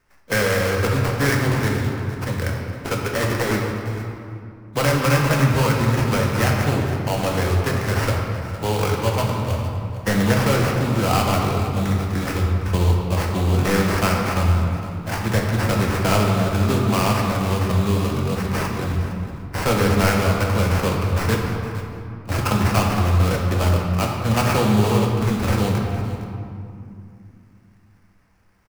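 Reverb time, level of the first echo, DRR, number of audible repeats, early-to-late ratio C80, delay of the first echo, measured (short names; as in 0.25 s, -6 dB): 2.5 s, -15.5 dB, -1.5 dB, 1, 2.5 dB, 0.46 s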